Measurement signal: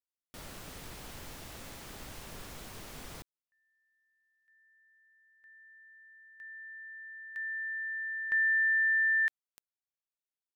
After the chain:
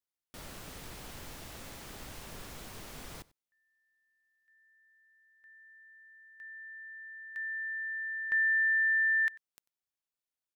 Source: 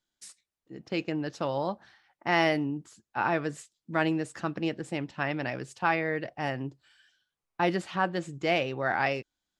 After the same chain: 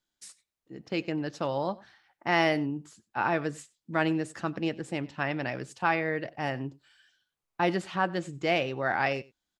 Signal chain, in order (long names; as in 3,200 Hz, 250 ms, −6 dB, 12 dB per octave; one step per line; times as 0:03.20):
single-tap delay 94 ms −22.5 dB